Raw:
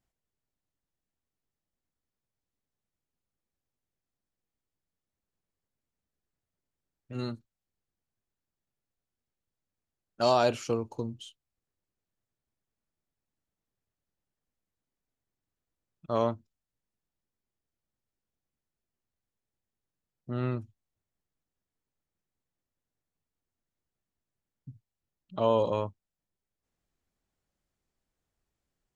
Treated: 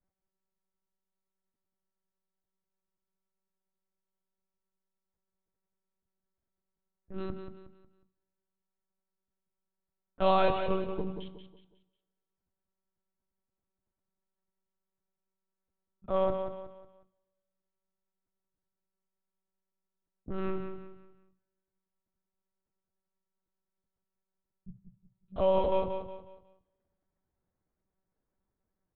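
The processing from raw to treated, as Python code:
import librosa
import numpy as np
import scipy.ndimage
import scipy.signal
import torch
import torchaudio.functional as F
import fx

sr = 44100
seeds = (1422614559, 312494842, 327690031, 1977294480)

p1 = fx.wiener(x, sr, points=15)
p2 = fx.lpc_monotone(p1, sr, seeds[0], pitch_hz=190.0, order=10)
p3 = p2 + fx.echo_feedback(p2, sr, ms=182, feedback_pct=36, wet_db=-8.0, dry=0)
y = fx.rev_double_slope(p3, sr, seeds[1], early_s=0.65, late_s=1.9, knee_db=-18, drr_db=14.5)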